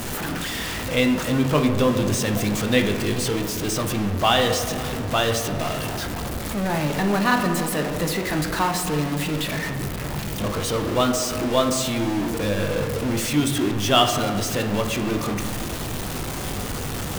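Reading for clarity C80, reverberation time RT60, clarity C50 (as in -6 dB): 8.5 dB, 2.4 s, 7.0 dB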